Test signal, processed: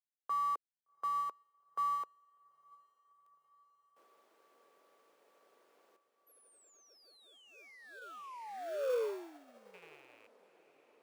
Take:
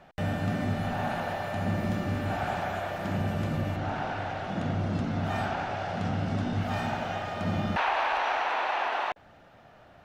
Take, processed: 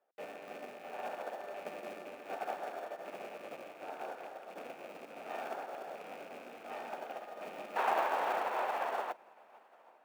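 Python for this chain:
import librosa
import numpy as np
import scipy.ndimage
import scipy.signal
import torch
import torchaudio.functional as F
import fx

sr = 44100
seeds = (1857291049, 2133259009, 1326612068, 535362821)

p1 = fx.rattle_buzz(x, sr, strikes_db=-34.0, level_db=-24.0)
p2 = fx.high_shelf(p1, sr, hz=2800.0, db=-12.0)
p3 = fx.sample_hold(p2, sr, seeds[0], rate_hz=1000.0, jitter_pct=0)
p4 = p2 + (p3 * librosa.db_to_amplitude(-9.0))
p5 = fx.ladder_highpass(p4, sr, hz=390.0, resonance_pct=45)
p6 = fx.high_shelf(p5, sr, hz=9700.0, db=3.0)
p7 = fx.echo_diffused(p6, sr, ms=770, feedback_pct=70, wet_db=-12.0)
p8 = fx.upward_expand(p7, sr, threshold_db=-49.0, expansion=2.5)
y = p8 * librosa.db_to_amplitude(6.0)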